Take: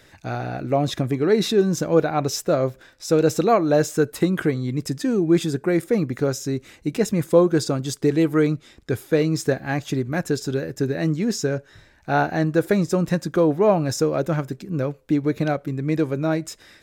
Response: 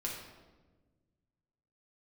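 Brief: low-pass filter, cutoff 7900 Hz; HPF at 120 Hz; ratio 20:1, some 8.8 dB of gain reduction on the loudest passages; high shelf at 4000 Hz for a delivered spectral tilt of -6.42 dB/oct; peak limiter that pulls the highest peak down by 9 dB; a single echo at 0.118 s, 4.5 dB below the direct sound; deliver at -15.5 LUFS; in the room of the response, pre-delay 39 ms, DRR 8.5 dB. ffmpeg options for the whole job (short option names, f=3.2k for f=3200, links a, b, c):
-filter_complex "[0:a]highpass=120,lowpass=7.9k,highshelf=f=4k:g=-6.5,acompressor=threshold=-20dB:ratio=20,alimiter=limit=-20dB:level=0:latency=1,aecho=1:1:118:0.596,asplit=2[a][b];[1:a]atrim=start_sample=2205,adelay=39[c];[b][c]afir=irnorm=-1:irlink=0,volume=-10dB[d];[a][d]amix=inputs=2:normalize=0,volume=12.5dB"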